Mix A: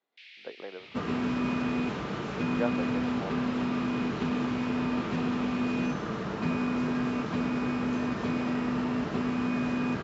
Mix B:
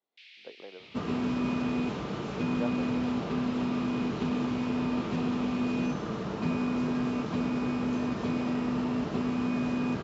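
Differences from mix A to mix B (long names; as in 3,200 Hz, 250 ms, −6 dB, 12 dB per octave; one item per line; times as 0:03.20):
speech −4.5 dB
master: add parametric band 1,700 Hz −5.5 dB 1 octave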